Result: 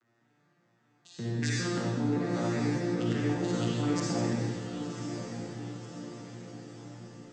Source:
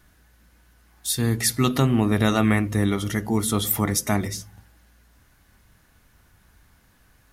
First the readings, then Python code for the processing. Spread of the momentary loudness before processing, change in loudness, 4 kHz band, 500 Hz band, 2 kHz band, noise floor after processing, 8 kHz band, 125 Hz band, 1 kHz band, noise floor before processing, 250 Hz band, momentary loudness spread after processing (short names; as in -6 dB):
7 LU, -9.5 dB, -10.0 dB, -6.0 dB, -9.0 dB, -70 dBFS, -14.5 dB, -7.5 dB, -9.0 dB, -59 dBFS, -7.0 dB, 16 LU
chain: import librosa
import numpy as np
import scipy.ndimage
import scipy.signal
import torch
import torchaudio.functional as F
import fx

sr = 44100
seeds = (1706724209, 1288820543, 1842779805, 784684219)

y = fx.vocoder_arp(x, sr, chord='major triad', root=46, every_ms=196)
y = scipy.signal.sosfilt(scipy.signal.butter(2, 220.0, 'highpass', fs=sr, output='sos'), y)
y = fx.level_steps(y, sr, step_db=20)
y = fx.echo_diffused(y, sr, ms=1068, feedback_pct=53, wet_db=-8)
y = fx.rev_freeverb(y, sr, rt60_s=1.4, hf_ratio=1.0, predelay_ms=15, drr_db=-5.5)
y = F.gain(torch.from_numpy(y), 4.5).numpy()